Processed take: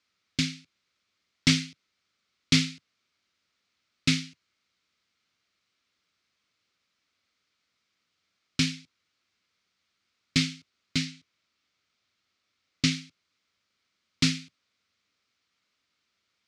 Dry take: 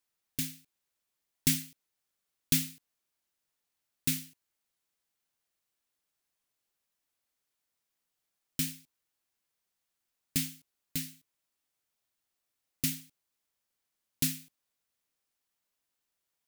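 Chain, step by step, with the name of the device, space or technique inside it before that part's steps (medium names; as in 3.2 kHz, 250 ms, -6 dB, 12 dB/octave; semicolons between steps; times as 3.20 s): 11.05–12.92 s: low-pass 9.8 kHz; guitar amplifier (valve stage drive 21 dB, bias 0.4; tone controls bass +10 dB, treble +15 dB; cabinet simulation 100–4400 Hz, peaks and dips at 140 Hz -9 dB, 840 Hz -6 dB, 1.3 kHz +8 dB, 2.2 kHz +7 dB); trim +8 dB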